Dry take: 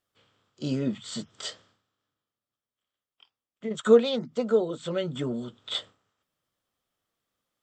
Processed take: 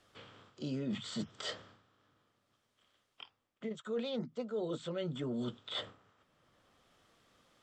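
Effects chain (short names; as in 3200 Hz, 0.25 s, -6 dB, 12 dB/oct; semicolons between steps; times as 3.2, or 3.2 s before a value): reverse; compressor 10:1, threshold -38 dBFS, peak gain reduction 26 dB; reverse; air absorption 58 m; three-band squash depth 40%; gain +4 dB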